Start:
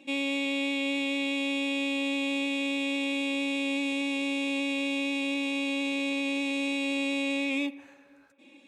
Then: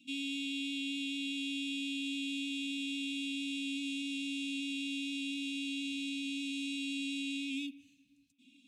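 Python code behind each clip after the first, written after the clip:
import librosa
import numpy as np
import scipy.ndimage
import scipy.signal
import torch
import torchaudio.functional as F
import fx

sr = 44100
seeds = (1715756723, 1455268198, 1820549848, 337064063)

y = scipy.signal.sosfilt(scipy.signal.cheby1(4, 1.0, [260.0, 2800.0], 'bandstop', fs=sr, output='sos'), x)
y = y * 10.0 ** (-3.5 / 20.0)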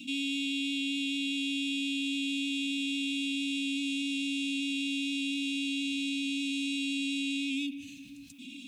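y = fx.env_flatten(x, sr, amount_pct=50)
y = y * 10.0 ** (4.5 / 20.0)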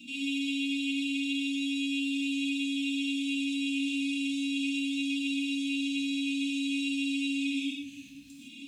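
y = fx.rev_gated(x, sr, seeds[0], gate_ms=190, shape='flat', drr_db=-5.0)
y = y * 10.0 ** (-6.5 / 20.0)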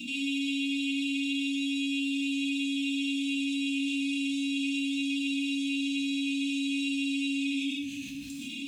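y = fx.env_flatten(x, sr, amount_pct=50)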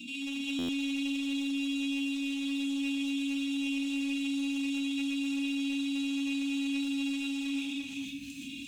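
y = np.clip(10.0 ** (26.5 / 20.0) * x, -1.0, 1.0) / 10.0 ** (26.5 / 20.0)
y = y + 10.0 ** (-3.5 / 20.0) * np.pad(y, (int(346 * sr / 1000.0), 0))[:len(y)]
y = fx.buffer_glitch(y, sr, at_s=(0.58,), block=512, repeats=8)
y = y * 10.0 ** (-5.0 / 20.0)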